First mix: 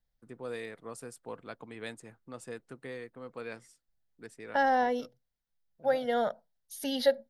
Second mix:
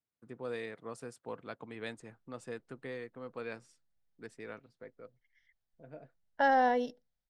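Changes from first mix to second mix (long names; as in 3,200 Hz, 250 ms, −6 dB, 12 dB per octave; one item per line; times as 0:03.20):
second voice: entry +1.85 s
master: add high-frequency loss of the air 58 metres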